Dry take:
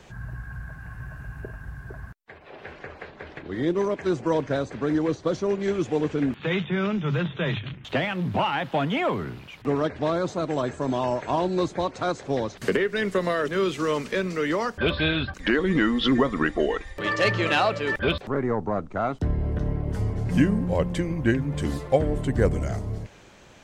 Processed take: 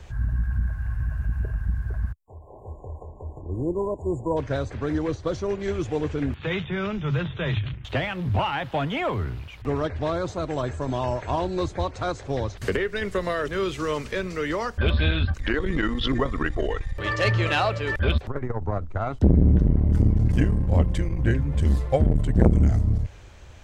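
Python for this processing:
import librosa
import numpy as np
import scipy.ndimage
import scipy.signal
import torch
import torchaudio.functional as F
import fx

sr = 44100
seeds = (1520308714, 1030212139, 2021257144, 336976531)

y = fx.low_shelf_res(x, sr, hz=120.0, db=13.5, q=1.5)
y = fx.spec_erase(y, sr, start_s=2.13, length_s=2.24, low_hz=1100.0, high_hz=6700.0)
y = fx.transformer_sat(y, sr, knee_hz=300.0)
y = y * librosa.db_to_amplitude(-1.0)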